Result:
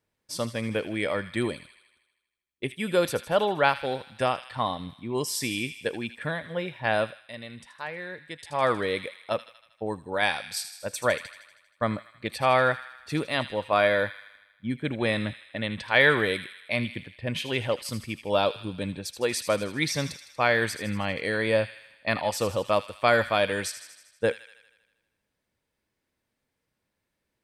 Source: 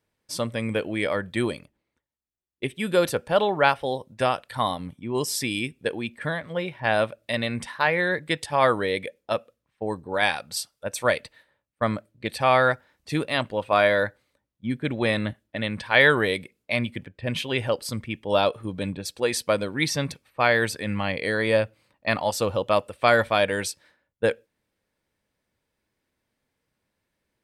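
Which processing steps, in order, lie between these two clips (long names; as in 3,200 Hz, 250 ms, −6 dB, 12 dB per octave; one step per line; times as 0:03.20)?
0:04.32–0:04.78: high-frequency loss of the air 73 metres
delay with a high-pass on its return 79 ms, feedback 63%, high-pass 1,900 Hz, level −10 dB
0:06.96–0:08.74: duck −11.5 dB, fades 0.35 s
level −2.5 dB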